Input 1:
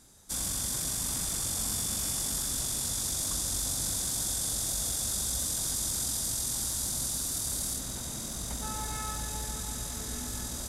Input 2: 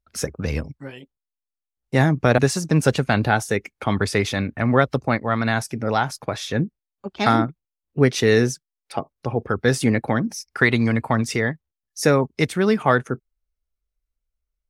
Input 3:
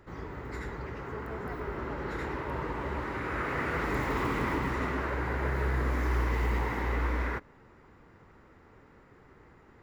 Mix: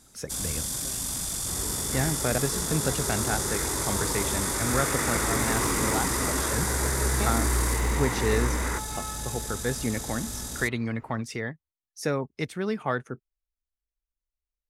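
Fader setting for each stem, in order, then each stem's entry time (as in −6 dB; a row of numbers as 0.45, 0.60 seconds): +1.0, −10.5, +2.5 decibels; 0.00, 0.00, 1.40 seconds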